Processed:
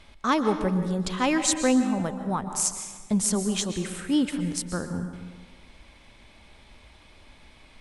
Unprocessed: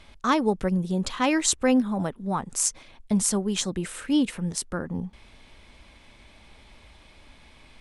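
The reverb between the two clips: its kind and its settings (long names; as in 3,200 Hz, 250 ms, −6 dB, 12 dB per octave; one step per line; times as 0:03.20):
dense smooth reverb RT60 1.4 s, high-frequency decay 0.65×, pre-delay 110 ms, DRR 8 dB
level −1 dB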